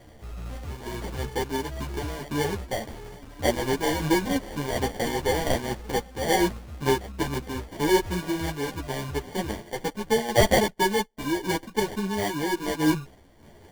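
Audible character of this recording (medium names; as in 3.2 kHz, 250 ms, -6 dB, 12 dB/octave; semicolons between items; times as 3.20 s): aliases and images of a low sample rate 1.3 kHz, jitter 0%; random-step tremolo; a shimmering, thickened sound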